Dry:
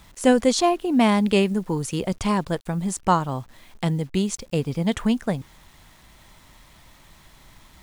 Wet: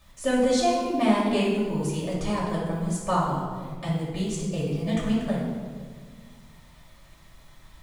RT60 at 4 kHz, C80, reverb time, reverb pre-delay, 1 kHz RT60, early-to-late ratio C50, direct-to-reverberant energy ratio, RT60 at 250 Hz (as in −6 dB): 1.0 s, 3.0 dB, 1.6 s, 3 ms, 1.4 s, 0.5 dB, −7.0 dB, 2.2 s